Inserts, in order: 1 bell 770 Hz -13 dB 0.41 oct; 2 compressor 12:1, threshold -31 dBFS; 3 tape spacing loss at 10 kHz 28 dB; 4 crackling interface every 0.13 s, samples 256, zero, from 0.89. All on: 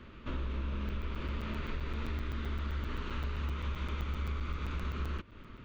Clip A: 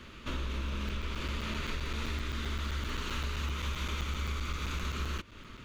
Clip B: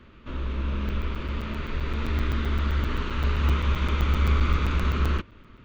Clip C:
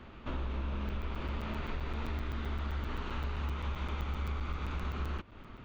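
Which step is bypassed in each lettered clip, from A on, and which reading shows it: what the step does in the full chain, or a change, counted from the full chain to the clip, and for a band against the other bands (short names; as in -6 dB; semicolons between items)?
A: 3, 4 kHz band +8.0 dB; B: 2, mean gain reduction 9.0 dB; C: 1, 1 kHz band +2.5 dB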